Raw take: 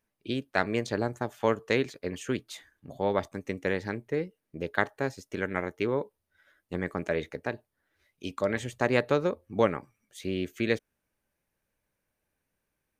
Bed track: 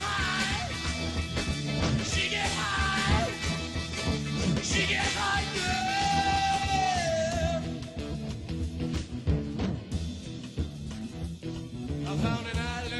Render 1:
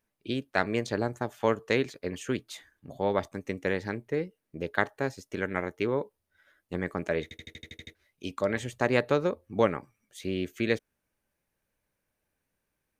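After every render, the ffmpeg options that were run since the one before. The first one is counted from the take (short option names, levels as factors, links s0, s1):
-filter_complex "[0:a]asplit=10[s0][s1][s2][s3][s4][s5][s6][s7][s8][s9];[s0]atrim=end=7.312[s10];[s1]atrim=start=7.228:end=7.312[s11];[s2]atrim=start=7.228:end=7.312[s12];[s3]atrim=start=7.228:end=7.312[s13];[s4]atrim=start=7.228:end=7.312[s14];[s5]atrim=start=7.228:end=7.312[s15];[s6]atrim=start=7.228:end=7.312[s16];[s7]atrim=start=7.228:end=7.312[s17];[s8]atrim=start=7.228:end=7.312[s18];[s9]atrim=start=7.948[s19];[s10][s11]acrossfade=d=0.004:c1=hsin:c2=hsin[s20];[s20][s12]acrossfade=d=0.004:c1=hsin:c2=hsin[s21];[s21][s13]acrossfade=d=0.004:c1=hsin:c2=hsin[s22];[s22][s14]acrossfade=d=0.004:c1=hsin:c2=hsin[s23];[s23][s15]acrossfade=d=0.004:c1=hsin:c2=hsin[s24];[s24][s16]acrossfade=d=0.004:c1=hsin:c2=hsin[s25];[s25][s17]acrossfade=d=0.004:c1=hsin:c2=hsin[s26];[s26][s18]acrossfade=d=0.004:c1=hsin:c2=hsin[s27];[s27][s19]acrossfade=d=0.004:c1=hsin:c2=hsin"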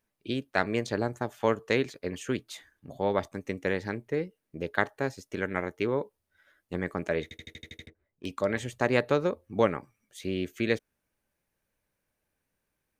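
-filter_complex "[0:a]asettb=1/sr,asplit=3[s0][s1][s2];[s0]atrim=end=7.864[s3];[s1]atrim=start=7.86:end=8.26,asetpts=PTS-STARTPTS,afade=t=in:d=0.004:c=qsin,afade=t=out:st=0.396:d=0.004:c=qsin,adynamicsmooth=sensitivity=7.5:basefreq=890[s4];[s2]atrim=start=8.256[s5];[s3][s4]acrossfade=d=0.004:c1=hsin:c2=qsin[s6];[s6][s5]acrossfade=d=0.004:c1=qsin:c2=hsin"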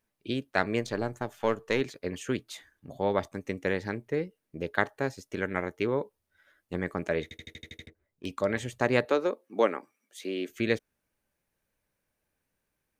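-filter_complex "[0:a]asettb=1/sr,asplit=3[s0][s1][s2];[s0]atrim=end=0.824[s3];[s1]atrim=start=0.82:end=1.81,asetpts=PTS-STARTPTS,afade=t=in:d=0.004:c=qsin,afade=t=out:st=0.986:d=0.004:c=qsin,aeval=exprs='if(lt(val(0),0),0.708*val(0),val(0))':c=same[s4];[s2]atrim=start=1.806[s5];[s3][s4]acrossfade=d=0.004:c1=hsin:c2=qsin[s6];[s6][s5]acrossfade=d=0.004:c1=qsin:c2=hsin,asettb=1/sr,asplit=3[s7][s8][s9];[s7]atrim=end=9.054[s10];[s8]atrim=start=9.05:end=10.49,asetpts=PTS-STARTPTS,afade=t=in:d=0.004:c=qsin,afade=t=out:st=1.436:d=0.004:c=qsin,highpass=f=250:w=0.5412,highpass=f=250:w=1.3066[s11];[s9]atrim=start=10.486[s12];[s10][s11]acrossfade=d=0.004:c1=hsin:c2=qsin[s13];[s13][s12]acrossfade=d=0.004:c1=qsin:c2=hsin"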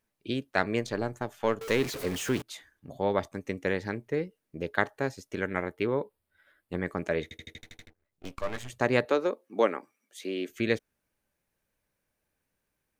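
-filter_complex "[0:a]asettb=1/sr,asplit=3[s0][s1][s2];[s0]atrim=end=1.614[s3];[s1]atrim=start=1.61:end=2.42,asetpts=PTS-STARTPTS,afade=t=in:d=0.004:c=qsin,afade=t=out:st=0.806:d=0.004:c=qsin,aeval=exprs='val(0)+0.5*0.0224*sgn(val(0))':c=same[s4];[s2]atrim=start=2.416[s5];[s3][s4]acrossfade=d=0.004:c1=hsin:c2=qsin[s6];[s6][s5]acrossfade=d=0.004:c1=qsin:c2=hsin,asettb=1/sr,asplit=3[s7][s8][s9];[s7]atrim=end=5.634[s10];[s8]atrim=start=5.63:end=6.85,asetpts=PTS-STARTPTS,afade=t=in:d=0.004:c=qsin,afade=t=out:st=1.216:d=0.004:c=qsin,equalizer=f=6200:t=o:w=0.35:g=-13[s11];[s9]atrim=start=6.846[s12];[s10][s11]acrossfade=d=0.004:c1=hsin:c2=qsin[s13];[s13][s12]acrossfade=d=0.004:c1=qsin:c2=hsin,asettb=1/sr,asplit=3[s14][s15][s16];[s14]atrim=end=7.584[s17];[s15]atrim=start=7.58:end=8.7,asetpts=PTS-STARTPTS,afade=t=in:d=0.004:c=qsin,afade=t=out:st=1.116:d=0.004:c=qsin,aeval=exprs='max(val(0),0)':c=same[s18];[s16]atrim=start=8.696[s19];[s17][s18]acrossfade=d=0.004:c1=hsin:c2=qsin[s20];[s20][s19]acrossfade=d=0.004:c1=qsin:c2=hsin"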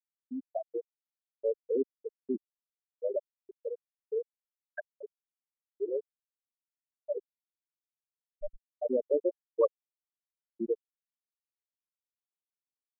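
-af "afftfilt=real='re*gte(hypot(re,im),0.316)':imag='im*gte(hypot(re,im),0.316)':win_size=1024:overlap=0.75,equalizer=f=69:t=o:w=1.9:g=-8"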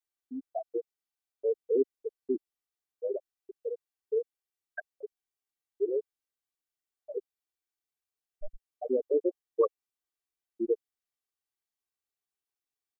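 -af "aecho=1:1:2.6:0.69"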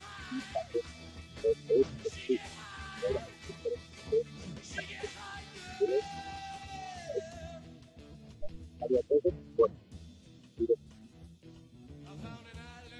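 -filter_complex "[1:a]volume=0.141[s0];[0:a][s0]amix=inputs=2:normalize=0"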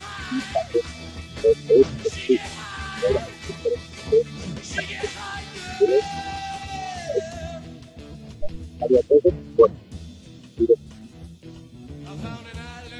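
-af "volume=3.98"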